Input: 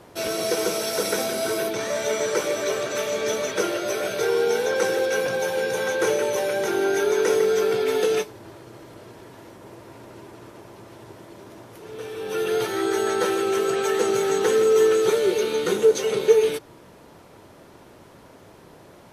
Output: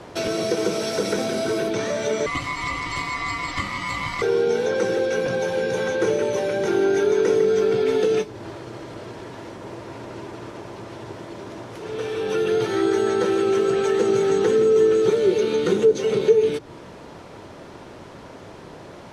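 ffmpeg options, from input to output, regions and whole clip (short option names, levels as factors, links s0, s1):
-filter_complex "[0:a]asettb=1/sr,asplit=3[s0][s1][s2];[s0]atrim=end=2.264[s3];[s1]atrim=start=2.26:end=4.22,asetpts=PTS-STARTPTS,afade=t=in:d=0.004:c=qsin,afade=t=out:st=1.956:d=0.004:c=qsin,aecho=1:1:4.7:0.58,atrim=end_sample=86436,aeval=exprs='val(0)*sin(2*PI*1600*n/s)':c=same,acrusher=bits=9:dc=4:mix=0:aa=0.000001[s4];[s2]atrim=start=4.216[s5];[s3][s4]acrossfade=d=0.004:c1=hsin:c2=qsin[s6];[s6][s5]acrossfade=d=0.004:c1=qsin:c2=hsin,lowpass=6700,acrossover=split=360[s7][s8];[s8]acompressor=threshold=0.02:ratio=4[s9];[s7][s9]amix=inputs=2:normalize=0,volume=2.37"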